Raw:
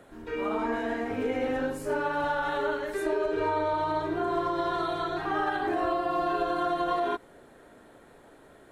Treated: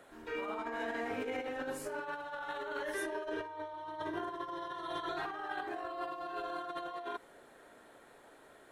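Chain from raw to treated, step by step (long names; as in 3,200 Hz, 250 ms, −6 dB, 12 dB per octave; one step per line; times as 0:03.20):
0:02.83–0:05.09: EQ curve with evenly spaced ripples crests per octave 1.2, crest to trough 8 dB
brickwall limiter −21.5 dBFS, peak gain reduction 6 dB
low-shelf EQ 340 Hz −12 dB
compressor whose output falls as the input rises −35 dBFS, ratio −0.5
level −4 dB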